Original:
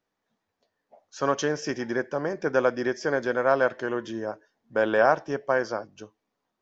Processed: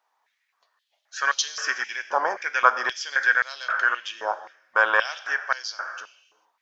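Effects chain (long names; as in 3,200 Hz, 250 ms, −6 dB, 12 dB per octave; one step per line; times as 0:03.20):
reverb whose tail is shaped and stops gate 470 ms falling, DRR 11 dB
high-pass on a step sequencer 3.8 Hz 900–4,000 Hz
level +5 dB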